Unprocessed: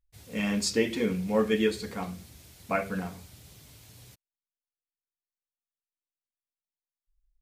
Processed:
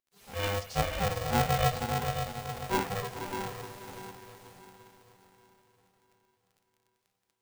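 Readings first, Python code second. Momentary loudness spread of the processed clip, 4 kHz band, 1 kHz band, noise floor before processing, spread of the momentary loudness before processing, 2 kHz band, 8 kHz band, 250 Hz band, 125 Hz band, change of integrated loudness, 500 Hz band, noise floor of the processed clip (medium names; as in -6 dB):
17 LU, 0.0 dB, +7.5 dB, under -85 dBFS, 13 LU, -0.5 dB, -2.0 dB, -8.5 dB, +5.5 dB, -2.5 dB, -4.5 dB, -80 dBFS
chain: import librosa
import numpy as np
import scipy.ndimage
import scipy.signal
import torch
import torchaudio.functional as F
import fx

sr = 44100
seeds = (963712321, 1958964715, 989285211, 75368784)

y = fx.hpss_only(x, sr, part='harmonic')
y = scipy.signal.sosfilt(scipy.signal.butter(2, 250.0, 'highpass', fs=sr, output='sos'), y)
y = fx.rider(y, sr, range_db=4, speed_s=2.0)
y = fx.dmg_crackle(y, sr, seeds[0], per_s=22.0, level_db=-52.0)
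y = fx.echo_diffused(y, sr, ms=523, feedback_pct=43, wet_db=-5)
y = y * np.sign(np.sin(2.0 * np.pi * 300.0 * np.arange(len(y)) / sr))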